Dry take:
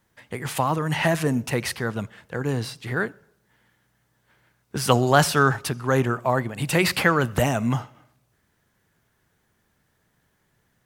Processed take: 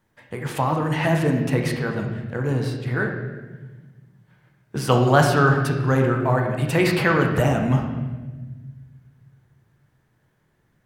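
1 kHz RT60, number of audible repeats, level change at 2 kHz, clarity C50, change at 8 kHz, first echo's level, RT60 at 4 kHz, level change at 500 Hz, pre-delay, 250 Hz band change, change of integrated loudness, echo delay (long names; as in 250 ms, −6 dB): 1.1 s, no echo audible, +0.5 dB, 4.5 dB, −6.0 dB, no echo audible, 1.1 s, +2.5 dB, 6 ms, +3.5 dB, +2.0 dB, no echo audible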